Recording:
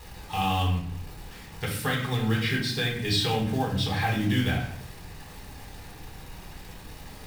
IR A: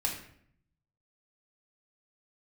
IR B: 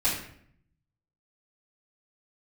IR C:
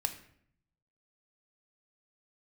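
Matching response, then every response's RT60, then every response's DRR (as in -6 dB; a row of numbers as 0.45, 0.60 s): A; 0.65, 0.65, 0.65 s; -2.5, -11.5, 5.5 dB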